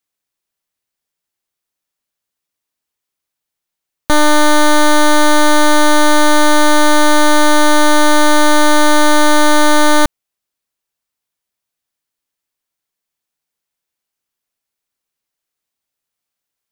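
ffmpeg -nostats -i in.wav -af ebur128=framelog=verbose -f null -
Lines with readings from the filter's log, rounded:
Integrated loudness:
  I:         -11.1 LUFS
  Threshold: -21.2 LUFS
Loudness range:
  LRA:         8.2 LU
  Threshold: -32.6 LUFS
  LRA low:   -19.0 LUFS
  LRA high:  -10.9 LUFS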